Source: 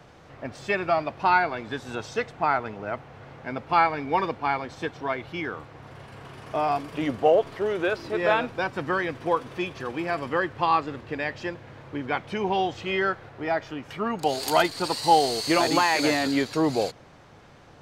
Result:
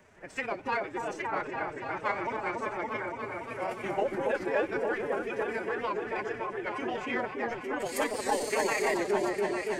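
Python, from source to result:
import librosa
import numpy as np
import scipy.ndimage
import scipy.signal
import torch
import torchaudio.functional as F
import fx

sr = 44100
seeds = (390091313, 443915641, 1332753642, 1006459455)

p1 = fx.graphic_eq(x, sr, hz=(125, 1000, 2000, 4000, 8000), db=(-9, -5, 6, -10, 8))
p2 = 10.0 ** (-21.0 / 20.0) * np.tanh(p1 / 10.0 ** (-21.0 / 20.0))
p3 = p1 + F.gain(torch.from_numpy(p2), -8.5).numpy()
p4 = fx.stretch_grains(p3, sr, factor=0.55, grain_ms=61.0)
p5 = p4 + fx.echo_opening(p4, sr, ms=284, hz=750, octaves=1, feedback_pct=70, wet_db=0, dry=0)
p6 = fx.pitch_keep_formants(p5, sr, semitones=4.5)
p7 = fx.record_warp(p6, sr, rpm=78.0, depth_cents=100.0)
y = F.gain(torch.from_numpy(p7), -8.0).numpy()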